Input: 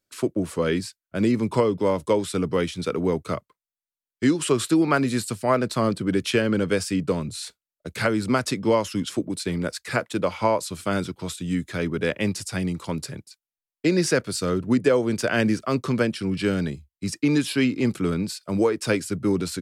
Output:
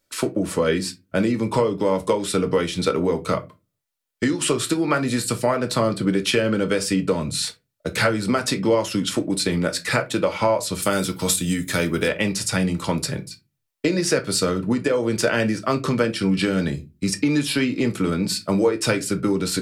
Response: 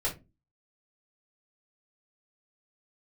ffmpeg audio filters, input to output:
-filter_complex "[0:a]asettb=1/sr,asplit=3[link_01][link_02][link_03];[link_01]atrim=end=10.824[link_04];[link_02]atrim=start=10.82:end=12.08,asetpts=PTS-STARTPTS,afade=type=in:duration=0.004:curve=qsin,afade=type=out:start_time=1.256:duration=0.004:curve=qsin,aemphasis=mode=production:type=50fm[link_05];[link_03]atrim=start=12.076[link_06];[link_04][link_05]acrossfade=duration=0.004:curve1=hsin:curve2=qsin[link_07];[link_07][link_06]acrossfade=duration=0.004:curve1=qsin:curve2=hsin,acompressor=threshold=-26dB:ratio=6,asplit=2[link_08][link_09];[1:a]atrim=start_sample=2205,lowshelf=frequency=330:gain=-9[link_10];[link_09][link_10]afir=irnorm=-1:irlink=0,volume=-8dB[link_11];[link_08][link_11]amix=inputs=2:normalize=0,volume=7dB"

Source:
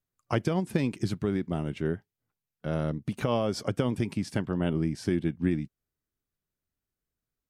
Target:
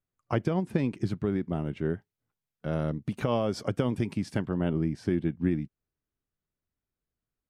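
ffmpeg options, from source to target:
ffmpeg -i in.wav -af "asetnsamples=nb_out_samples=441:pad=0,asendcmd='1.9 highshelf g -5;4.49 highshelf g -12',highshelf=frequency=3600:gain=-12" out.wav

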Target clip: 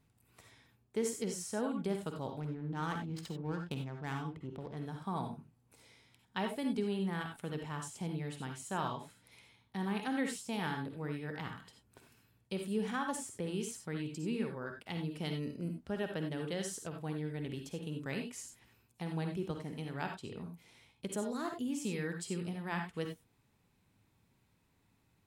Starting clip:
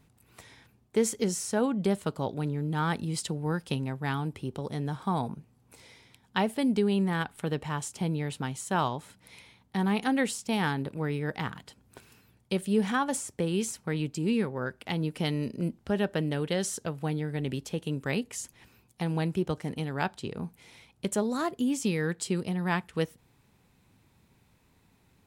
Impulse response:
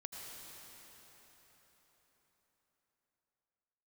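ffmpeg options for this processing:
-filter_complex "[0:a]asettb=1/sr,asplit=3[link_01][link_02][link_03];[link_01]atrim=end=2.404[link_04];[link_02]atrim=start=2.4:end=4.77,asetpts=PTS-STARTPTS,afade=type=in:duration=0.004:curve=qsin,afade=type=out:start_time=2.366:duration=0.004:curve=qsin,adynamicsmooth=sensitivity=8:basefreq=850[link_05];[link_03]atrim=start=4.766[link_06];[link_04][link_05]acrossfade=duration=0.004:curve1=hsin:curve2=qsin[link_07];[link_07][link_06]acrossfade=duration=0.004:curve1=qsin:curve2=hsin[link_08];[1:a]atrim=start_sample=2205,afade=type=out:start_time=0.22:duration=0.01,atrim=end_sample=10143,asetrate=74970,aresample=44100[link_09];[link_08][link_09]afir=irnorm=-1:irlink=0,volume=1dB"

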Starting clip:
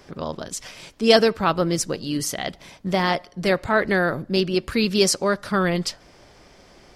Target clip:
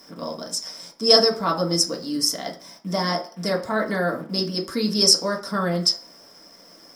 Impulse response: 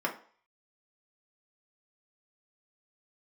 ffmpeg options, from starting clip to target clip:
-filter_complex "[0:a]highshelf=frequency=3700:width_type=q:width=3:gain=12,acrusher=bits=8:dc=4:mix=0:aa=0.000001[link_01];[1:a]atrim=start_sample=2205[link_02];[link_01][link_02]afir=irnorm=-1:irlink=0,volume=-10.5dB"

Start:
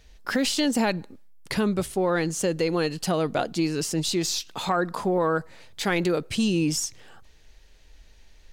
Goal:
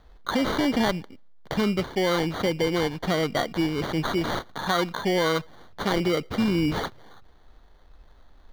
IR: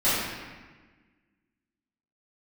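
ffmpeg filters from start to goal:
-af "acrusher=samples=17:mix=1:aa=0.000001,highshelf=frequency=5900:width_type=q:width=1.5:gain=-8"

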